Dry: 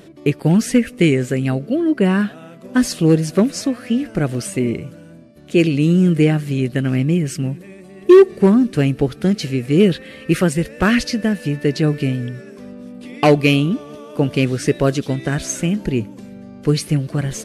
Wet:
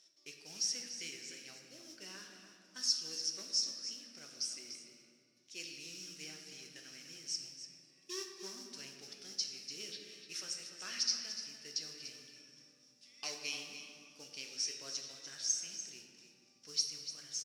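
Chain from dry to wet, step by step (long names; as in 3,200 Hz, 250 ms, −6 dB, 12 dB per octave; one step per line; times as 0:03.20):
noise that follows the level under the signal 27 dB
resonant band-pass 5,500 Hz, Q 11
single-tap delay 293 ms −11 dB
on a send at −2 dB: convolution reverb RT60 2.3 s, pre-delay 6 ms
on the sum: level +1.5 dB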